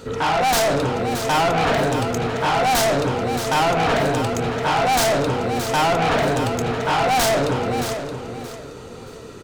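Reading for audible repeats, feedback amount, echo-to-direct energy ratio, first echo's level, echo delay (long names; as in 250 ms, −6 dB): 3, 26%, −8.5 dB, −9.0 dB, 623 ms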